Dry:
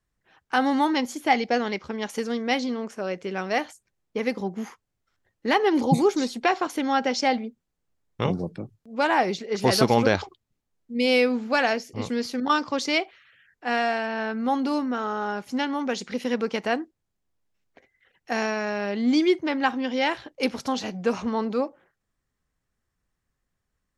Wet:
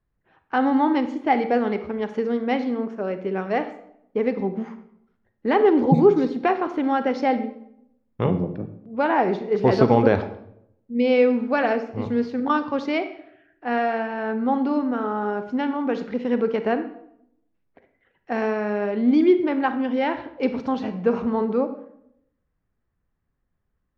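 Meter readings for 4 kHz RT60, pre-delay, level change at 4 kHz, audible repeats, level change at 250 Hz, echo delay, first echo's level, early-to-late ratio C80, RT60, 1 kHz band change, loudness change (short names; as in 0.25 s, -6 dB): 0.50 s, 33 ms, -9.5 dB, none, +4.0 dB, none, none, 14.0 dB, 0.75 s, +1.0 dB, +2.5 dB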